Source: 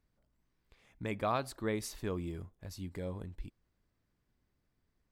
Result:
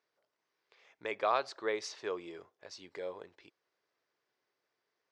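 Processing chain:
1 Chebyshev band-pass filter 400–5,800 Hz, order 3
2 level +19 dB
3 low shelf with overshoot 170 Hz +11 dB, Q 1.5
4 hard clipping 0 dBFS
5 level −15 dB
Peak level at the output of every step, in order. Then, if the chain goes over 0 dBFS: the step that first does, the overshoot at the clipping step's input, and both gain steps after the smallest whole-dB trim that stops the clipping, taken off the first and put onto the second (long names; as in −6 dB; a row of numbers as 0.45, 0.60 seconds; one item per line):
−20.0, −1.0, −1.5, −1.5, −16.5 dBFS
no step passes full scale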